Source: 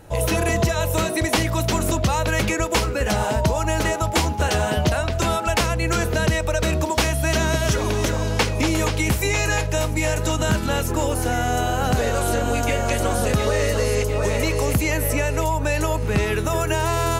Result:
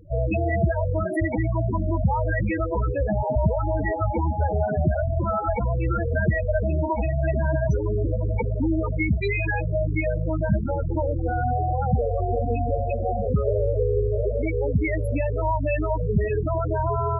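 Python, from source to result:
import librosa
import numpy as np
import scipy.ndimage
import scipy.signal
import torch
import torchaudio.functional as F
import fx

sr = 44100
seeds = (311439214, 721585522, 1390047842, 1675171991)

y = fx.echo_diffused(x, sr, ms=788, feedback_pct=71, wet_db=-13.0)
y = fx.spec_topn(y, sr, count=8)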